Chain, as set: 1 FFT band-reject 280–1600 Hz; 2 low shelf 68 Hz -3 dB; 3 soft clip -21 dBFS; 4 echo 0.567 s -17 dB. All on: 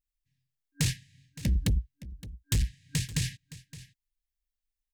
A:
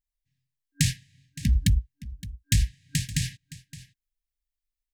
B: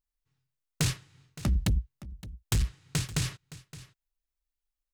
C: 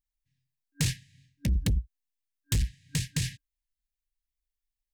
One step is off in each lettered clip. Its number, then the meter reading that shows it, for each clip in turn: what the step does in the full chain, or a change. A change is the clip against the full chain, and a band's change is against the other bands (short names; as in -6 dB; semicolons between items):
3, distortion -12 dB; 1, 1 kHz band +10.0 dB; 4, momentary loudness spread change -13 LU